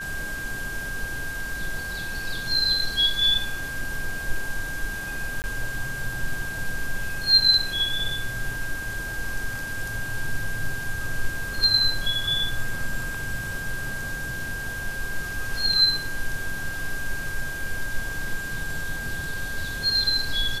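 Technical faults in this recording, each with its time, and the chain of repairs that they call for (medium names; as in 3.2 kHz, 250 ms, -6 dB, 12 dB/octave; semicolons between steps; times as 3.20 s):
whine 1.6 kHz -31 dBFS
5.42–5.44 s: dropout 19 ms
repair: band-stop 1.6 kHz, Q 30; interpolate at 5.42 s, 19 ms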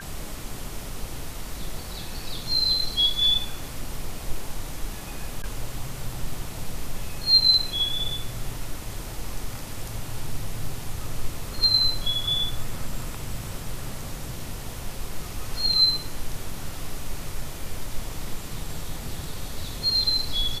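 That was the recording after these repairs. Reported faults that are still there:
nothing left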